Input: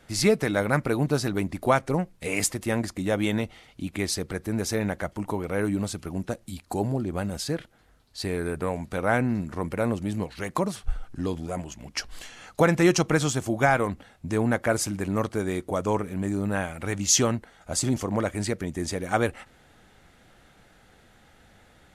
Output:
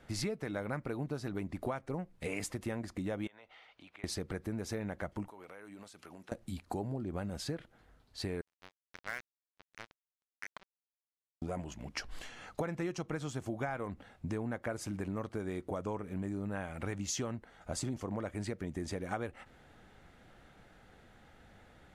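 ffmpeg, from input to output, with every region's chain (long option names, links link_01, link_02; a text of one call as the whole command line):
ffmpeg -i in.wav -filter_complex "[0:a]asettb=1/sr,asplit=3[link_01][link_02][link_03];[link_01]atrim=end=3.274[link_04];[link_02]atrim=start=3.27:end=4.04,asetpts=PTS-STARTPTS,afade=type=in:duration=0.004:curve=qsin,afade=type=out:start_time=0.766:duration=0.004:curve=qsin,acrossover=split=550 4800:gain=0.0631 1 0.141[link_05][link_06][link_07];[link_05][link_06][link_07]amix=inputs=3:normalize=0,acompressor=threshold=-48dB:ratio=4:attack=3.2:release=140:knee=1:detection=peak[link_08];[link_03]atrim=start=4.036[link_09];[link_04][link_08]acrossfade=duration=0.004:curve1=hsin:curve2=qsin[link_10];[link_10][link_09]acrossfade=duration=0.004:curve1=qsin:curve2=hsin,asettb=1/sr,asplit=3[link_11][link_12][link_13];[link_11]atrim=end=5.284[link_14];[link_12]atrim=start=5.28:end=6.32,asetpts=PTS-STARTPTS,afade=type=in:duration=0.004:curve=qsin,afade=type=out:start_time=1.036:duration=0.004:curve=qsin,highpass=frequency=1100:poles=1,acompressor=threshold=-43dB:ratio=10:attack=3.2:release=140:knee=1:detection=peak[link_15];[link_13]atrim=start=6.316[link_16];[link_14][link_15]acrossfade=duration=0.004:curve1=hsin:curve2=qsin[link_17];[link_17][link_16]acrossfade=duration=0.004:curve1=qsin:curve2=hsin,asettb=1/sr,asplit=3[link_18][link_19][link_20];[link_18]atrim=end=8.414[link_21];[link_19]atrim=start=8.41:end=11.42,asetpts=PTS-STARTPTS,afade=type=in:duration=0.004:curve=qsin,afade=type=out:start_time=3.006:duration=0.004:curve=qsin,bandpass=frequency=2000:width_type=q:width=3.5,acrusher=bits=4:mix=0:aa=0.5[link_22];[link_20]atrim=start=11.416[link_23];[link_21][link_22]acrossfade=duration=0.004:curve1=hsin:curve2=qsin[link_24];[link_24][link_23]acrossfade=duration=0.004:curve1=qsin:curve2=hsin,highshelf=frequency=3800:gain=-9,acompressor=threshold=-32dB:ratio=6,volume=-2.5dB" out.wav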